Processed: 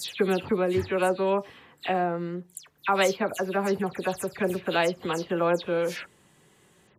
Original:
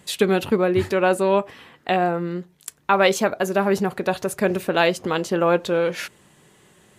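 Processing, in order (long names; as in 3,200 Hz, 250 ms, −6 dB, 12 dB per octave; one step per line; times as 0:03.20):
every frequency bin delayed by itself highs early, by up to 113 ms
level −5.5 dB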